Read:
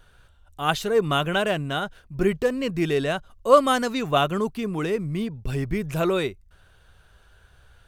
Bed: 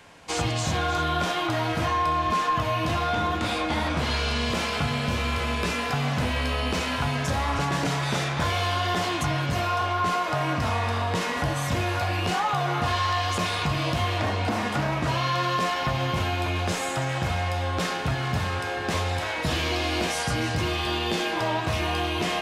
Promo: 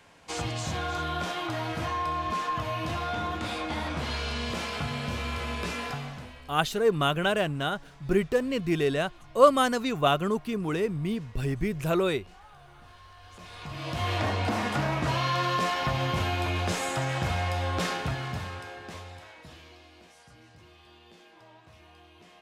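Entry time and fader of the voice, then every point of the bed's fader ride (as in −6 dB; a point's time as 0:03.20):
5.90 s, −2.5 dB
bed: 0:05.87 −6 dB
0:06.59 −28 dB
0:13.17 −28 dB
0:14.11 −2 dB
0:17.91 −2 dB
0:19.94 −28 dB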